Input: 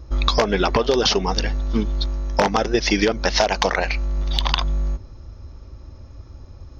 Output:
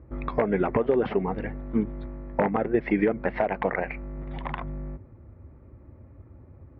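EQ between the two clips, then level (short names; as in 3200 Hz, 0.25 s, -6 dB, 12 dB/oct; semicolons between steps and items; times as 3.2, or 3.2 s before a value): HPF 110 Hz 12 dB/oct; elliptic low-pass 2100 Hz, stop band 80 dB; bell 1200 Hz -9 dB 2.3 oct; 0.0 dB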